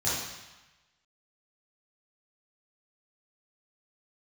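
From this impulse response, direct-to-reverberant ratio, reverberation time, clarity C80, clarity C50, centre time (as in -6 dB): -10.0 dB, 1.1 s, 2.5 dB, -1.0 dB, 79 ms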